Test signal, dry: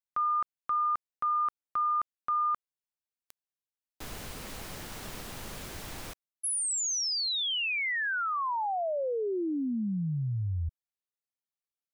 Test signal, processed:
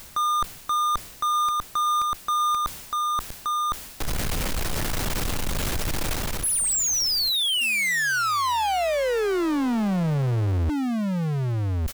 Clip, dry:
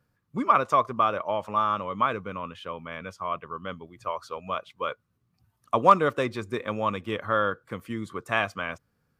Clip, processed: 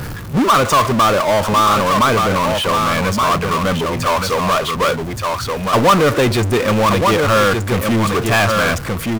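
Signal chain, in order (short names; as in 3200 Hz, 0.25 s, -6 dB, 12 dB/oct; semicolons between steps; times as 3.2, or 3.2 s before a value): low shelf 96 Hz +10 dB; echo 1.174 s -10.5 dB; power-law curve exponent 0.35; reverse; upward compressor, threshold -22 dBFS; reverse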